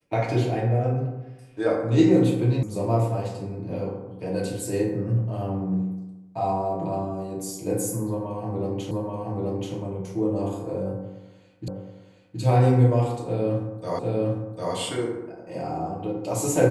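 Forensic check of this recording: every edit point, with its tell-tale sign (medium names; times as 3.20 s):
2.63 s: sound stops dead
8.91 s: repeat of the last 0.83 s
11.68 s: repeat of the last 0.72 s
13.99 s: repeat of the last 0.75 s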